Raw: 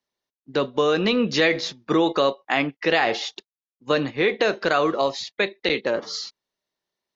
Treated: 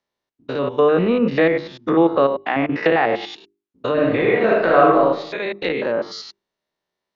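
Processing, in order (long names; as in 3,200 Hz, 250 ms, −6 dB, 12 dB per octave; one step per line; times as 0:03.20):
spectrum averaged block by block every 100 ms
treble cut that deepens with the level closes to 2,000 Hz, closed at −21.5 dBFS
high-shelf EQ 4,500 Hz −11 dB
mains-hum notches 50/100/150/200/250/300/350/400 Hz
0:02.69–0:03.36: multiband upward and downward compressor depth 70%
0:03.92–0:04.99: thrown reverb, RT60 0.81 s, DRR −1.5 dB
level +6.5 dB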